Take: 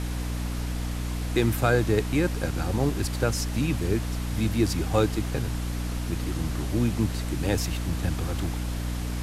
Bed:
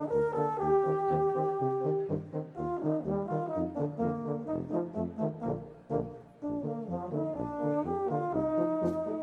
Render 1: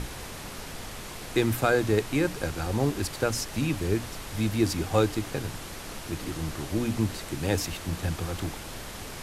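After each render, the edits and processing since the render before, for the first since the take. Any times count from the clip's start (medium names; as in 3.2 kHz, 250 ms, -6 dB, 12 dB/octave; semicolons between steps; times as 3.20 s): hum notches 60/120/180/240/300 Hz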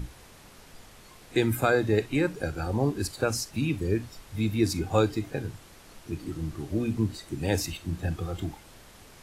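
noise print and reduce 12 dB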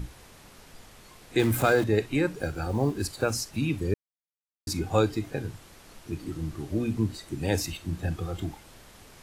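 1.39–1.84 s: jump at every zero crossing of -31 dBFS; 2.35–3.44 s: block-companded coder 7-bit; 3.94–4.67 s: mute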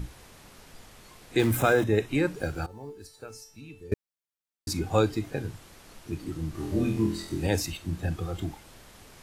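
1.57–2.09 s: Butterworth band-stop 4.5 kHz, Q 5.7; 2.66–3.92 s: feedback comb 440 Hz, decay 0.41 s, mix 90%; 6.52–7.47 s: flutter echo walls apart 4.1 m, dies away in 0.48 s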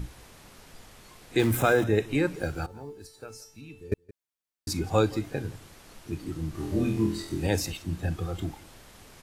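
delay 170 ms -21.5 dB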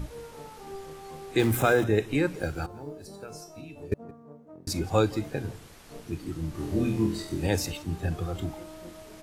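add bed -14.5 dB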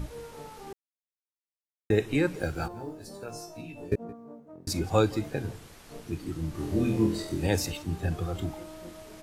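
0.73–1.90 s: mute; 2.58–4.40 s: doubling 17 ms -2.5 dB; 6.89–7.32 s: peaking EQ 530 Hz +7 dB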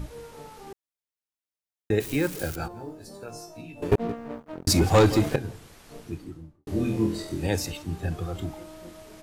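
2.00–2.56 s: zero-crossing glitches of -27 dBFS; 3.82–5.36 s: waveshaping leveller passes 3; 5.99–6.67 s: studio fade out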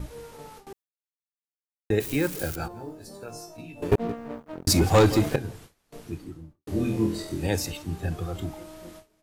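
gate with hold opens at -35 dBFS; treble shelf 11 kHz +4 dB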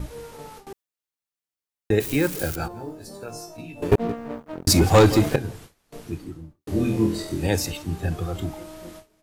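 trim +3.5 dB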